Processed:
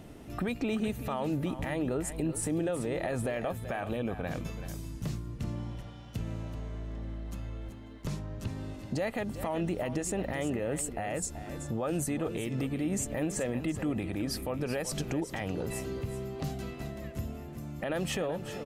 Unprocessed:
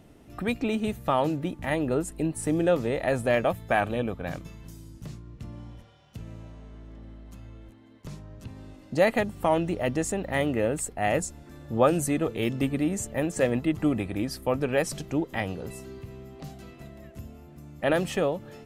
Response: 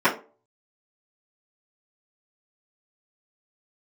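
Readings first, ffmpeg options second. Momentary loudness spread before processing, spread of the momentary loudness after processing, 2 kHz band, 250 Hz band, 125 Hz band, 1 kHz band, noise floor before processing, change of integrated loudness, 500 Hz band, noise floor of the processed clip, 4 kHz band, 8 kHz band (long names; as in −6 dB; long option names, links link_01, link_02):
21 LU, 9 LU, −7.5 dB, −4.5 dB, −2.0 dB, −9.0 dB, −51 dBFS, −7.5 dB, −7.5 dB, −45 dBFS, −3.5 dB, −1.0 dB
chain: -af "acompressor=threshold=-32dB:ratio=2.5,alimiter=level_in=4.5dB:limit=-24dB:level=0:latency=1:release=72,volume=-4.5dB,aecho=1:1:381:0.266,volume=5dB"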